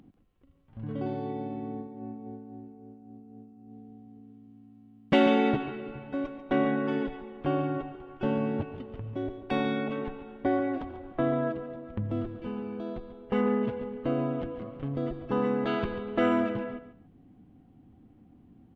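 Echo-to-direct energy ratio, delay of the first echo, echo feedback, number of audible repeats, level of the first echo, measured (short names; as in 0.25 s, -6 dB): -12.5 dB, 0.141 s, 19%, 2, -12.5 dB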